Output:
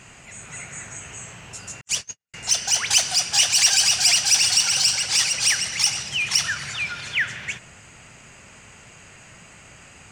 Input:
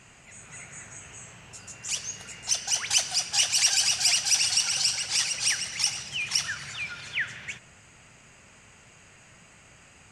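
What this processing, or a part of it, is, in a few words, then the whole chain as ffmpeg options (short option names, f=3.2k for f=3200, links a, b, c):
parallel distortion: -filter_complex "[0:a]asettb=1/sr,asplit=3[a][b][c];[a]atrim=end=1.814[d];[b]atrim=start=1.81:end=2.34,asetpts=PTS-STARTPTS,afade=t=in:d=0.004:c=qsin,afade=t=out:st=0.526:d=0.004:c=qsin,agate=range=-58dB:threshold=-32dB:ratio=16:detection=peak[e];[c]atrim=start=2.336[f];[d][e]acrossfade=d=0.004:c1=hsin:c2=qsin[g];[g][f]acrossfade=d=0.004:c1=qsin:c2=hsin,asplit=2[h][i];[i]asoftclip=type=hard:threshold=-26dB,volume=-7.5dB[j];[h][j]amix=inputs=2:normalize=0,volume=4dB"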